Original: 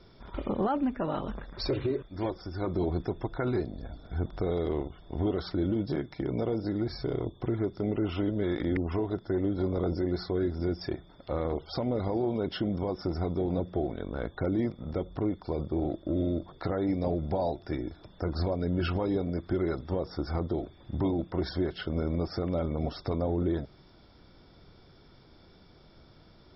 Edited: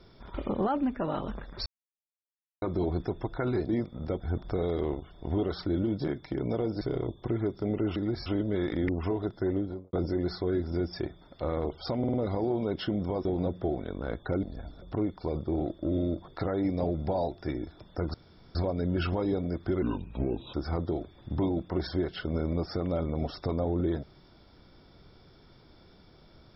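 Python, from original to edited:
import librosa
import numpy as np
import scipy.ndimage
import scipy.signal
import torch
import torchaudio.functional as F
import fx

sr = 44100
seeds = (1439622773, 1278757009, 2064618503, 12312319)

y = fx.studio_fade_out(x, sr, start_s=9.37, length_s=0.44)
y = fx.edit(y, sr, fx.silence(start_s=1.66, length_s=0.96),
    fx.swap(start_s=3.69, length_s=0.39, other_s=14.55, other_length_s=0.51),
    fx.move(start_s=6.69, length_s=0.3, to_s=8.14),
    fx.stutter(start_s=11.87, slice_s=0.05, count=4),
    fx.cut(start_s=12.98, length_s=0.39),
    fx.insert_room_tone(at_s=18.38, length_s=0.41),
    fx.speed_span(start_s=19.65, length_s=0.51, speed=0.71), tone=tone)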